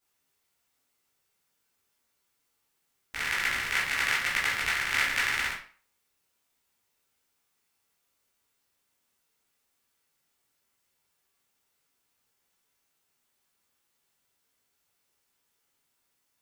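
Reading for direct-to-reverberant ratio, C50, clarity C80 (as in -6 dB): -8.5 dB, 5.0 dB, 10.5 dB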